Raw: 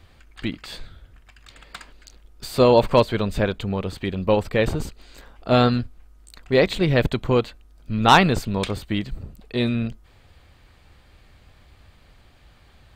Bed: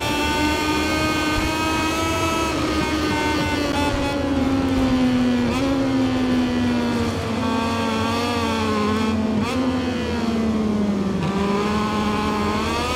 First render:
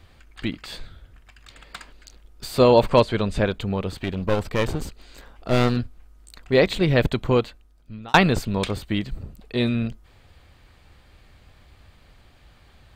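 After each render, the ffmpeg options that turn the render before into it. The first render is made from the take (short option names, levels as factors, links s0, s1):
-filter_complex "[0:a]asettb=1/sr,asplit=3[s0][s1][s2];[s0]atrim=end=2.894[s3];[s1]atrim=start=2.89:end=3.47,asetpts=PTS-STARTPTS,afade=t=in:d=0.004:c=qsin,afade=t=out:st=0.576:d=0.004:c=qsin,lowpass=f=11000:w=0.5412,lowpass=f=11000:w=1.3066[s4];[s2]atrim=start=3.466[s5];[s3][s4]acrossfade=d=0.004:c1=hsin:c2=qsin[s6];[s6][s5]acrossfade=d=0.004:c1=qsin:c2=hsin,asettb=1/sr,asplit=3[s7][s8][s9];[s7]atrim=end=3.974[s10];[s8]atrim=start=3.97:end=5.77,asetpts=PTS-STARTPTS,afade=t=in:d=0.004:c=qsin,afade=t=out:st=1.796:d=0.004:c=qsin,aeval=exprs='clip(val(0),-1,0.0398)':c=same[s11];[s9]atrim=start=5.766[s12];[s10][s11]acrossfade=d=0.004:c1=hsin:c2=qsin[s13];[s13][s12]acrossfade=d=0.004:c1=qsin:c2=hsin,asplit=2[s14][s15];[s14]atrim=end=8.14,asetpts=PTS-STARTPTS,afade=t=out:st=7.34:d=0.8[s16];[s15]atrim=start=8.14,asetpts=PTS-STARTPTS,afade=t=in:d=0.004:c=hsin[s17];[s16][s17]concat=n=2:v=0:a=1"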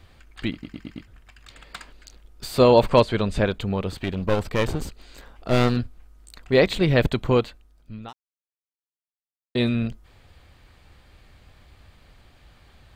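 -filter_complex "[0:a]asplit=8[s0][s1][s2][s3][s4][s5][s6][s7];[s0]atrim=end=0.632[s8];[s1]atrim=start=0.518:end=0.632[s9];[s2]atrim=start=0.518:end=0.632[s10];[s3]atrim=start=0.518:end=0.632[s11];[s4]atrim=start=0.518:end=0.632[s12];[s5]atrim=start=1.068:end=8.13,asetpts=PTS-STARTPTS,afade=t=out:st=7.058:d=0.004:c=hsin[s13];[s6]atrim=start=8.13:end=9.55,asetpts=PTS-STARTPTS,volume=0[s14];[s7]atrim=start=9.55,asetpts=PTS-STARTPTS,afade=t=in:d=0.004:c=hsin[s15];[s8][s9]acrossfade=d=0.004:c1=hsin:c2=hsin[s16];[s16][s10]acrossfade=d=0.004:c1=hsin:c2=hsin[s17];[s17][s11]acrossfade=d=0.004:c1=hsin:c2=hsin[s18];[s18][s12]acrossfade=d=0.004:c1=hsin:c2=hsin[s19];[s13][s14][s15]concat=n=3:v=0:a=1[s20];[s19][s20]acrossfade=d=0.004:c1=hsin:c2=hsin"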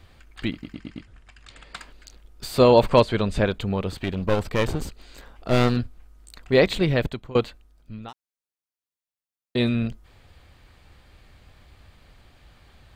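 -filter_complex "[0:a]asettb=1/sr,asplit=3[s0][s1][s2];[s0]atrim=end=0.744[s3];[s1]atrim=start=0.74:end=1.76,asetpts=PTS-STARTPTS,afade=t=in:d=0.004:c=qsin,afade=t=out:st=1.016:d=0.004:c=qsin,lowpass=f=10000:w=0.5412,lowpass=f=10000:w=1.3066[s4];[s2]atrim=start=1.756[s5];[s3][s4]acrossfade=d=0.004:c1=hsin:c2=qsin[s6];[s6][s5]acrossfade=d=0.004:c1=qsin:c2=hsin,asplit=2[s7][s8];[s7]atrim=end=7.35,asetpts=PTS-STARTPTS,afade=t=out:st=6.76:d=0.59:silence=0.0707946[s9];[s8]atrim=start=7.35,asetpts=PTS-STARTPTS,afade=t=in:d=0.004:c=hsin:silence=0.0707946[s10];[s9][s10]concat=n=2:v=0:a=1"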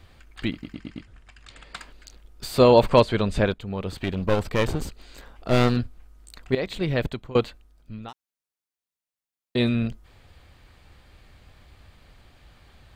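-filter_complex "[0:a]asplit=3[s0][s1][s2];[s0]atrim=end=3.54,asetpts=PTS-STARTPTS,afade=t=out:st=3.536:d=0.004:c=hsin:silence=0.237137[s3];[s1]atrim=start=3.54:end=6.55,asetpts=PTS-STARTPTS,afade=t=in:d=0.48:silence=0.237137,afade=t=out:st=3.006:d=0.004:c=hsin:silence=0.188365[s4];[s2]atrim=start=6.55,asetpts=PTS-STARTPTS,afade=t=in:d=0.58:silence=0.188365[s5];[s3][s4][s5]concat=n=3:v=0:a=1"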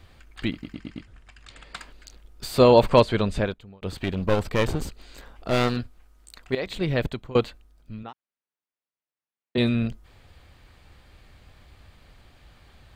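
-filter_complex "[0:a]asettb=1/sr,asplit=3[s0][s1][s2];[s0]atrim=end=5.504[s3];[s1]atrim=start=5.5:end=6.66,asetpts=PTS-STARTPTS,afade=t=in:d=0.004:c=qsin,afade=t=out:st=1.156:d=0.004:c=qsin,lowshelf=f=360:g=-6[s4];[s2]atrim=start=6.656[s5];[s3][s4]acrossfade=d=0.004:c1=hsin:c2=qsin[s6];[s6][s5]acrossfade=d=0.004:c1=qsin:c2=hsin,asettb=1/sr,asplit=3[s7][s8][s9];[s7]atrim=end=8.034[s10];[s8]atrim=start=8.03:end=9.58,asetpts=PTS-STARTPTS,afade=t=in:d=0.004:c=qsin,afade=t=out:st=1.546:d=0.004:c=qsin,highpass=120,lowpass=2700[s11];[s9]atrim=start=9.576[s12];[s10][s11]acrossfade=d=0.004:c1=hsin:c2=qsin[s13];[s13][s12]acrossfade=d=0.004:c1=qsin:c2=hsin,asplit=2[s14][s15];[s14]atrim=end=3.82,asetpts=PTS-STARTPTS,afade=t=out:st=3.24:d=0.58[s16];[s15]atrim=start=3.82,asetpts=PTS-STARTPTS,afade=t=in:d=0.004:c=hsin[s17];[s16][s17]concat=n=2:v=0:a=1"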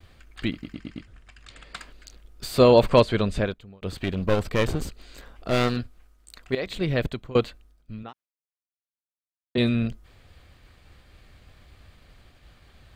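-af "equalizer=f=880:w=4.7:g=-4.5,agate=range=0.0224:threshold=0.00282:ratio=3:detection=peak"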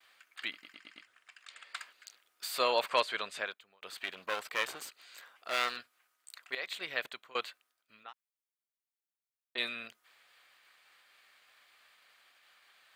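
-af "highpass=1300,equalizer=f=5200:t=o:w=2.1:g=-4.5"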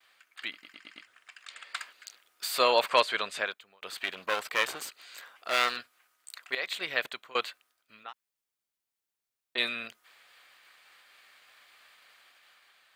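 -af "dynaudnorm=f=310:g=5:m=1.88"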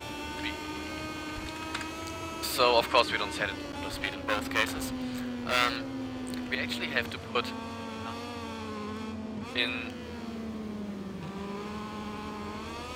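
-filter_complex "[1:a]volume=0.141[s0];[0:a][s0]amix=inputs=2:normalize=0"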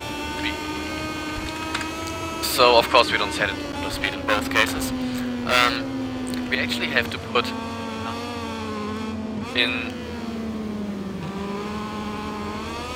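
-af "volume=2.66,alimiter=limit=0.891:level=0:latency=1"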